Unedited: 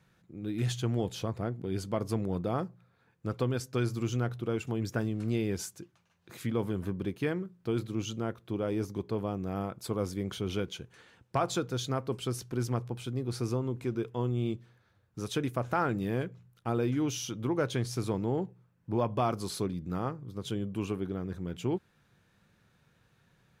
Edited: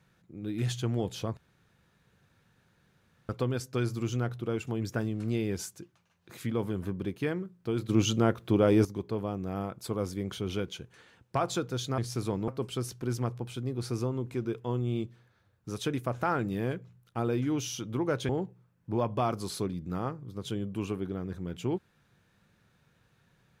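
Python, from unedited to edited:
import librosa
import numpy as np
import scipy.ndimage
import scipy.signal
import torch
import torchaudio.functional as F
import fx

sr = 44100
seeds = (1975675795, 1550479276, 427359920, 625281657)

y = fx.edit(x, sr, fx.room_tone_fill(start_s=1.37, length_s=1.92),
    fx.clip_gain(start_s=7.89, length_s=0.96, db=9.0),
    fx.move(start_s=17.79, length_s=0.5, to_s=11.98), tone=tone)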